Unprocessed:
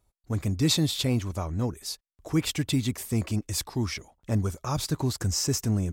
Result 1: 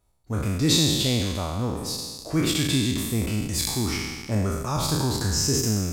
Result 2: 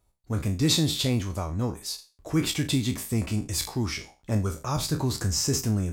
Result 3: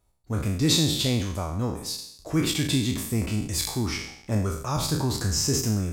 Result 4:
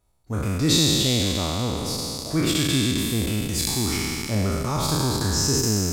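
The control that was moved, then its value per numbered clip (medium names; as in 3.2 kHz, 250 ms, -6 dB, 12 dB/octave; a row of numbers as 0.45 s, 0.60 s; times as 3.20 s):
spectral sustain, RT60: 1.49 s, 0.31 s, 0.71 s, 3.2 s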